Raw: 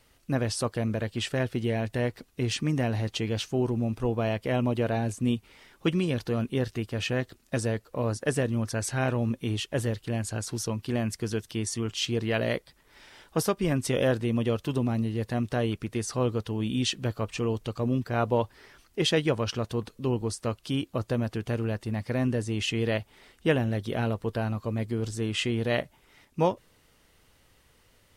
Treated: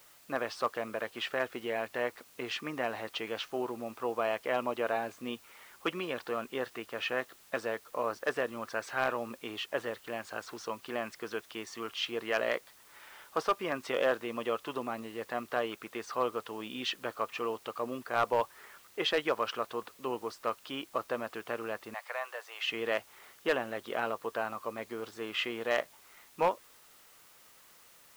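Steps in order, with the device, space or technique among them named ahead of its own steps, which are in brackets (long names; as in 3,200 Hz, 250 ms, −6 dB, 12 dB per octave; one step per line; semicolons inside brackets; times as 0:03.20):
drive-through speaker (band-pass filter 540–2,900 Hz; parametric band 1,200 Hz +6.5 dB 0.47 octaves; hard clipping −19.5 dBFS, distortion −19 dB; white noise bed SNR 24 dB)
0:21.94–0:22.66: inverse Chebyshev high-pass filter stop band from 240 Hz, stop band 50 dB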